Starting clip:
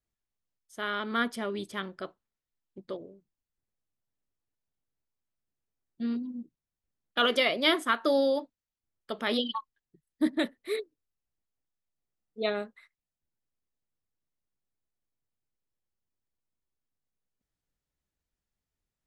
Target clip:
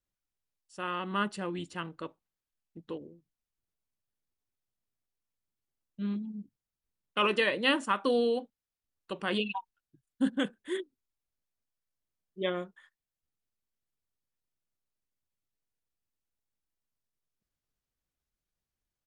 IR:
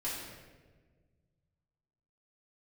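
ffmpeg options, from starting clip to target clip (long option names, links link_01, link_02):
-af "asetrate=38170,aresample=44100,atempo=1.15535,volume=-2dB"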